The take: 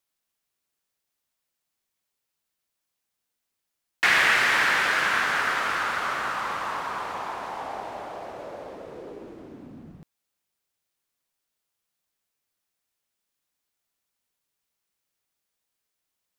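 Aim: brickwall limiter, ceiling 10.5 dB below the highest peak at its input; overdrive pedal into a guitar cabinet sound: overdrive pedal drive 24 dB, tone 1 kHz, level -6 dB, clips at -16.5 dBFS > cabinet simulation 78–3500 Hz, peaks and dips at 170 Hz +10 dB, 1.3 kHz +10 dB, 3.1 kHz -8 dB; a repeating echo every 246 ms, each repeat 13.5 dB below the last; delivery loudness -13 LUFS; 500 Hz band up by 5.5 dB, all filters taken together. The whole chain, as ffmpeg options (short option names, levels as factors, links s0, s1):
-filter_complex "[0:a]equalizer=f=500:t=o:g=6.5,alimiter=limit=0.119:level=0:latency=1,aecho=1:1:246|492:0.211|0.0444,asplit=2[s0][s1];[s1]highpass=f=720:p=1,volume=15.8,asoftclip=type=tanh:threshold=0.15[s2];[s0][s2]amix=inputs=2:normalize=0,lowpass=f=1000:p=1,volume=0.501,highpass=78,equalizer=f=170:t=q:w=4:g=10,equalizer=f=1300:t=q:w=4:g=10,equalizer=f=3100:t=q:w=4:g=-8,lowpass=f=3500:w=0.5412,lowpass=f=3500:w=1.3066,volume=3.16"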